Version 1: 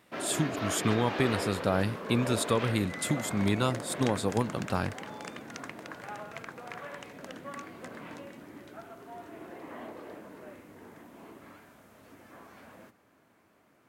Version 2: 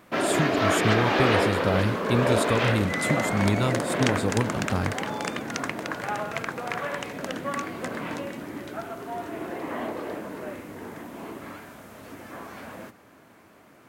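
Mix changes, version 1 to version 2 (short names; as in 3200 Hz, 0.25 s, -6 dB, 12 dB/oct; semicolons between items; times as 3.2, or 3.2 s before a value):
speech: remove HPF 200 Hz 6 dB/oct; background +11.5 dB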